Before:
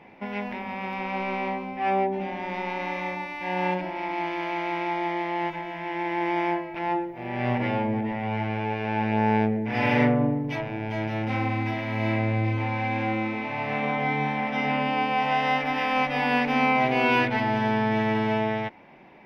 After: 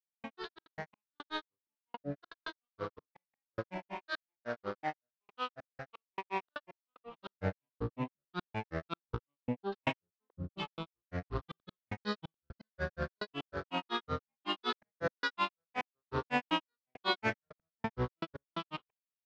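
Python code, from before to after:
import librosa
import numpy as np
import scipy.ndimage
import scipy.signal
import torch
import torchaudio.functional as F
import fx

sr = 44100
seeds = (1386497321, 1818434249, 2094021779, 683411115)

y = scipy.signal.medfilt(x, 9)
y = fx.high_shelf(y, sr, hz=4000.0, db=6.5)
y = fx.step_gate(y, sr, bpm=117, pattern='..xxx.x..xx.x', floor_db=-60.0, edge_ms=4.5)
y = fx.peak_eq(y, sr, hz=320.0, db=-5.5, octaves=0.48)
y = fx.granulator(y, sr, seeds[0], grain_ms=122.0, per_s=5.4, spray_ms=100.0, spread_st=12)
y = scipy.signal.sosfilt(scipy.signal.butter(4, 5100.0, 'lowpass', fs=sr, output='sos'), y)
y = F.gain(torch.from_numpy(y), -5.0).numpy()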